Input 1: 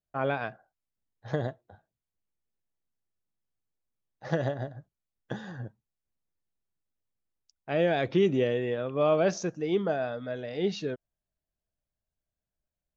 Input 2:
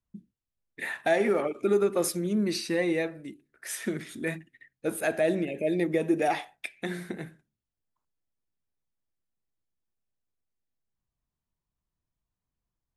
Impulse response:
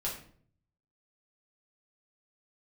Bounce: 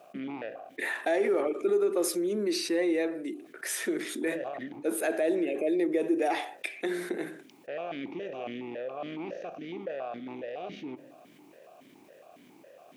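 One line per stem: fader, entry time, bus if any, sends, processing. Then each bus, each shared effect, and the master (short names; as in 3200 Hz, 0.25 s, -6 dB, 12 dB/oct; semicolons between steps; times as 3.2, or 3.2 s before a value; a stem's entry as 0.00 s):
-14.5 dB, 0.00 s, send -23.5 dB, per-bin compression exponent 0.4; power-law curve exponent 1.4; vowel sequencer 7.2 Hz
+0.5 dB, 0.00 s, no send, ladder high-pass 290 Hz, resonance 45%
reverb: on, RT60 0.55 s, pre-delay 5 ms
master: fast leveller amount 50%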